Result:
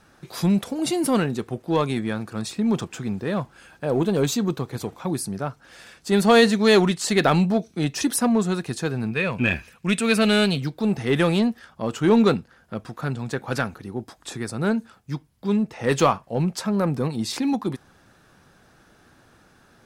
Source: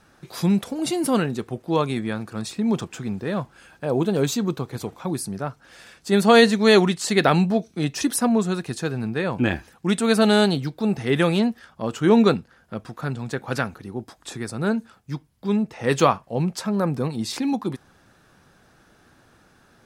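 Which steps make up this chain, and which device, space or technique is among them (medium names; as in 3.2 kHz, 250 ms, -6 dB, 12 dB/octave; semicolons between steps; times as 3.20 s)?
parallel distortion (in parallel at -5.5 dB: hard clipper -18.5 dBFS, distortion -8 dB); 9.11–10.61 s: on the sum: graphic EQ with 31 bands 315 Hz -11 dB, 800 Hz -9 dB, 2.5 kHz +11 dB; trim -3 dB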